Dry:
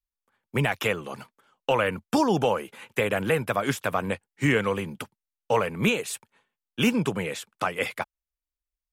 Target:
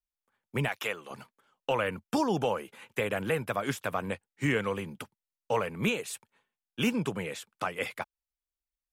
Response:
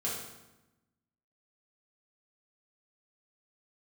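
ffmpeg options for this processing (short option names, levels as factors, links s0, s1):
-filter_complex "[0:a]asettb=1/sr,asplit=3[s0][s1][s2];[s0]atrim=end=0.684[s3];[s1]atrim=start=0.68:end=1.11,asetpts=PTS-STARTPTS,afade=t=in:d=0.004:c=qsin,afade=t=out:st=0.426:d=0.004:c=qsin,highpass=f=600:p=1[s4];[s2]atrim=start=1.106[s5];[s3][s4]acrossfade=d=0.004:c1=hsin:c2=qsin[s6];[s6][s5]acrossfade=d=0.004:c1=qsin:c2=hsin,volume=0.531"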